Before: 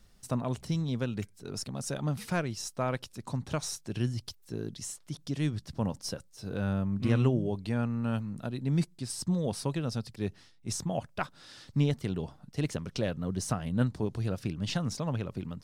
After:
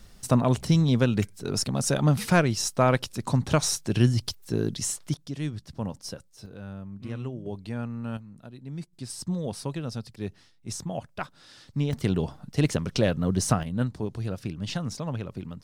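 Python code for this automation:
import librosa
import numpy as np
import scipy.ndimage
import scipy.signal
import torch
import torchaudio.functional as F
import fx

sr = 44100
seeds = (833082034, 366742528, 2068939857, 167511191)

y = fx.gain(x, sr, db=fx.steps((0.0, 10.0), (5.14, -1.0), (6.46, -9.0), (7.46, -2.5), (8.17, -9.0), (8.93, -0.5), (11.93, 8.0), (13.63, 0.5)))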